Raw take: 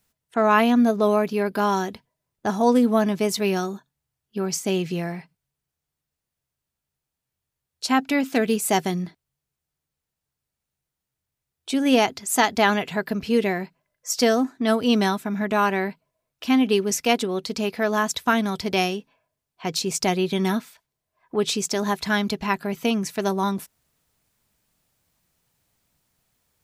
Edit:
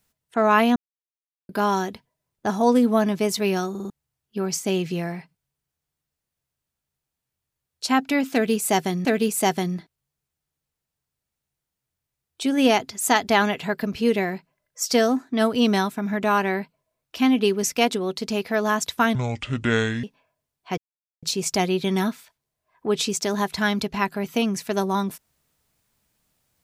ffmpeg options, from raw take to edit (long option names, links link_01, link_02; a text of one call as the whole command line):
ffmpeg -i in.wav -filter_complex "[0:a]asplit=11[link_01][link_02][link_03][link_04][link_05][link_06][link_07][link_08][link_09][link_10][link_11];[link_01]atrim=end=0.76,asetpts=PTS-STARTPTS,afade=type=out:start_time=0.756:duration=0.004:curve=hsin[link_12];[link_02]atrim=start=0.76:end=1.49,asetpts=PTS-STARTPTS,volume=0[link_13];[link_03]atrim=start=1.49:end=3.752,asetpts=PTS-STARTPTS,afade=type=in:duration=0.004:curve=hsin[link_14];[link_04]atrim=start=3.698:end=3.752[link_15];[link_05]atrim=start=3.698:end=3.752[link_16];[link_06]atrim=start=3.698:end=3.752[link_17];[link_07]atrim=start=3.898:end=9.052[link_18];[link_08]atrim=start=8.328:end=18.434[link_19];[link_09]atrim=start=18.43:end=18.97,asetpts=PTS-STARTPTS,asetrate=26901,aresample=44100,atrim=end_sample=39039,asetpts=PTS-STARTPTS[link_20];[link_10]atrim=start=18.966:end=19.71,asetpts=PTS-STARTPTS,afade=type=out:start_time=0.74:duration=0.004:curve=hsin,apad=pad_dur=0.45[link_21];[link_11]atrim=start=19.71,asetpts=PTS-STARTPTS,afade=type=in:duration=0.004:curve=hsin[link_22];[link_12][link_13][link_14]concat=n=3:v=0:a=1[link_23];[link_23][link_15]acrossfade=duration=0.004:curve1=hsin:curve2=hsin[link_24];[link_24][link_16]acrossfade=duration=0.004:curve1=hsin:curve2=hsin[link_25];[link_25][link_17]acrossfade=duration=0.004:curve1=hsin:curve2=hsin[link_26];[link_26][link_18]acrossfade=duration=0.004:curve1=hsin:curve2=hsin[link_27];[link_27][link_19]acrossfade=duration=0.004:curve1=hsin:curve2=hsin[link_28];[link_28][link_20]acrossfade=duration=0.004:curve1=hsin:curve2=hsin[link_29];[link_21][link_22]concat=n=2:v=0:a=1[link_30];[link_29][link_30]acrossfade=duration=0.004:curve1=hsin:curve2=hsin" out.wav